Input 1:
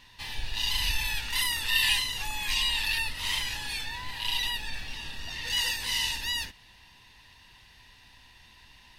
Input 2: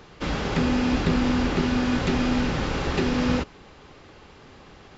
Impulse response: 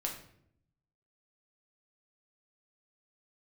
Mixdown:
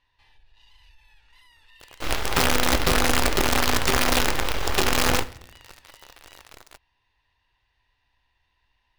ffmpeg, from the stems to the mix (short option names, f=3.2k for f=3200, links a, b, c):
-filter_complex "[0:a]lowpass=f=1.4k:p=1,acompressor=threshold=-47dB:ratio=2,asoftclip=type=tanh:threshold=-31.5dB,volume=-11.5dB[a];[1:a]acrusher=bits=4:dc=4:mix=0:aa=0.000001,adelay=1800,volume=2dB,asplit=2[b][c];[c]volume=-10dB[d];[2:a]atrim=start_sample=2205[e];[d][e]afir=irnorm=-1:irlink=0[f];[a][b][f]amix=inputs=3:normalize=0,equalizer=f=190:w=1.1:g=-13"